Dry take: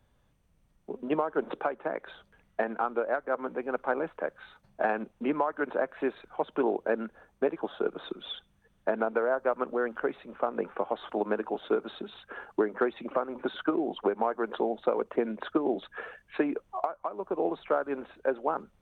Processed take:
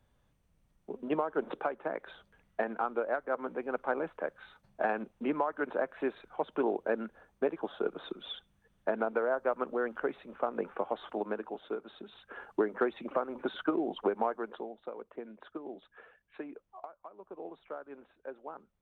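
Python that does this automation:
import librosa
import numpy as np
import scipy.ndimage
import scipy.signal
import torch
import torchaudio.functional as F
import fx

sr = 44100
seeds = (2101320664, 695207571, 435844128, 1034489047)

y = fx.gain(x, sr, db=fx.line((10.94, -3.0), (11.84, -10.5), (12.49, -2.5), (14.26, -2.5), (14.74, -15.0)))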